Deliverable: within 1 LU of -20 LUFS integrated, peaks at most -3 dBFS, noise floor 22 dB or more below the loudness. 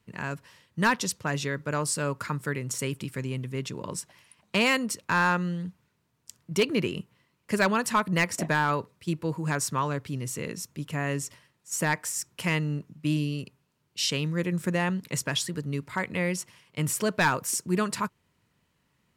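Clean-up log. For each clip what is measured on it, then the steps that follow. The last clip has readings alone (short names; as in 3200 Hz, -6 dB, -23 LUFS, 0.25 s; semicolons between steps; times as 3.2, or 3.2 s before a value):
clipped 0.2%; flat tops at -16.0 dBFS; loudness -28.5 LUFS; peak -16.0 dBFS; loudness target -20.0 LUFS
-> clip repair -16 dBFS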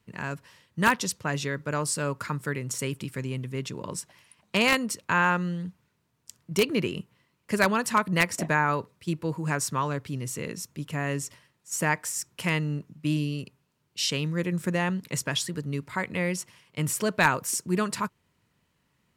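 clipped 0.0%; loudness -28.0 LUFS; peak -7.0 dBFS; loudness target -20.0 LUFS
-> gain +8 dB; limiter -3 dBFS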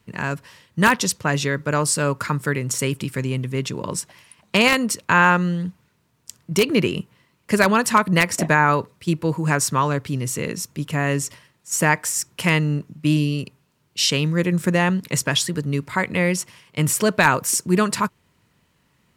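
loudness -20.5 LUFS; peak -3.0 dBFS; noise floor -65 dBFS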